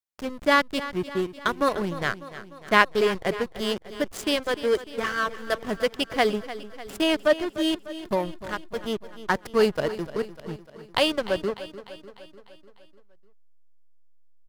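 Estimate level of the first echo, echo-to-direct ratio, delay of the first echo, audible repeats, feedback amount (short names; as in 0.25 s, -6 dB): -14.5 dB, -12.5 dB, 0.299 s, 5, 58%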